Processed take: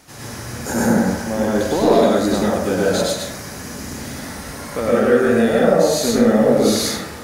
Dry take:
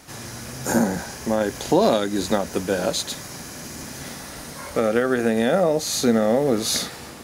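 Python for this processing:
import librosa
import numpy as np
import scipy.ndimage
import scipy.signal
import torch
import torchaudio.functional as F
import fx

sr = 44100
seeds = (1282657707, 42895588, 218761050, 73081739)

p1 = 10.0 ** (-15.0 / 20.0) * (np.abs((x / 10.0 ** (-15.0 / 20.0) + 3.0) % 4.0 - 2.0) - 1.0)
p2 = x + (p1 * librosa.db_to_amplitude(-11.5))
p3 = fx.rev_plate(p2, sr, seeds[0], rt60_s=0.88, hf_ratio=0.4, predelay_ms=90, drr_db=-6.0)
y = p3 * librosa.db_to_amplitude(-4.0)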